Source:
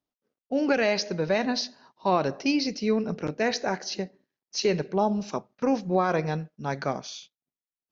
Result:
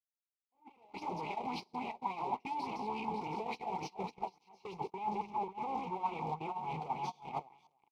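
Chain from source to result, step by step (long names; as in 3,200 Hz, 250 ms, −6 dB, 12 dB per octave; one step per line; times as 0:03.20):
feedback delay that plays each chunk backwards 274 ms, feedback 46%, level −7 dB
bass and treble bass −1 dB, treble +4 dB
fuzz pedal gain 49 dB, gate −43 dBFS
on a send: single-tap delay 300 ms −19 dB
on the sum: volume swells 757 ms
formant filter u
noise gate −28 dBFS, range −29 dB
phaser with its sweep stopped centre 700 Hz, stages 4
reversed playback
downward compressor 6 to 1, threshold −46 dBFS, peak gain reduction 19 dB
reversed playback
high-shelf EQ 2,800 Hz −9 dB
auto-filter bell 3.5 Hz 500–2,900 Hz +9 dB
level +7.5 dB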